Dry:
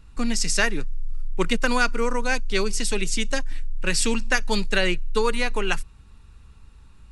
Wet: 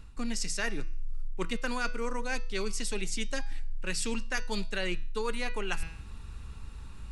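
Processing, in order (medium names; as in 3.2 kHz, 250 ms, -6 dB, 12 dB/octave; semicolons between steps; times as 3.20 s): de-hum 163.3 Hz, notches 38; reverse; compression 10:1, threshold -33 dBFS, peak gain reduction 18 dB; reverse; trim +5.5 dB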